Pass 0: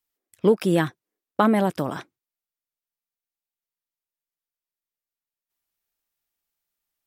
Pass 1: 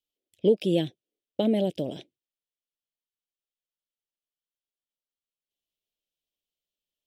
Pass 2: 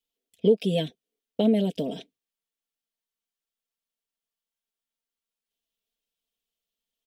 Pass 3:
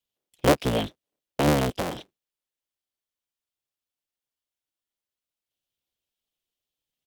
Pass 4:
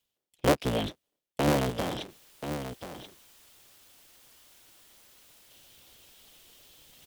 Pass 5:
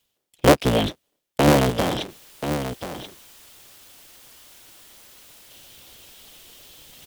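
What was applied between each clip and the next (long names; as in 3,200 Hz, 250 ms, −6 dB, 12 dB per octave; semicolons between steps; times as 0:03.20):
drawn EQ curve 110 Hz 0 dB, 600 Hz +5 dB, 1,200 Hz −28 dB, 3,100 Hz +9 dB, 4,600 Hz 0 dB, 13,000 Hz −8 dB; level −6.5 dB
comb filter 4.4 ms, depth 92%; downward compressor 1.5 to 1, threshold −21 dBFS, peak gain reduction 4.5 dB
sub-harmonics by changed cycles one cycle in 3, inverted
reversed playback; upward compression, threshold −25 dBFS; reversed playback; single-tap delay 1,033 ms −9.5 dB; level −4 dB
one scale factor per block 7 bits; level +9 dB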